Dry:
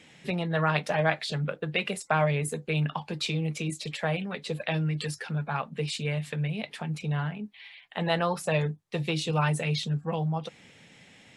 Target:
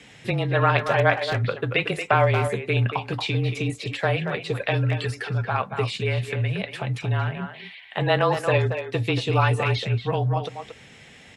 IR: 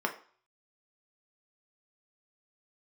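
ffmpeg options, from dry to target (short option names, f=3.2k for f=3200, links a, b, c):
-filter_complex "[0:a]afreqshift=-30,acrossover=split=3900[a][b];[b]acompressor=threshold=-48dB:ratio=4:attack=1:release=60[c];[a][c]amix=inputs=2:normalize=0,asplit=2[d][e];[e]adelay=230,highpass=300,lowpass=3.4k,asoftclip=type=hard:threshold=-20dB,volume=-7dB[f];[d][f]amix=inputs=2:normalize=0,asplit=2[g][h];[1:a]atrim=start_sample=2205[i];[h][i]afir=irnorm=-1:irlink=0,volume=-26dB[j];[g][j]amix=inputs=2:normalize=0,volume=5.5dB"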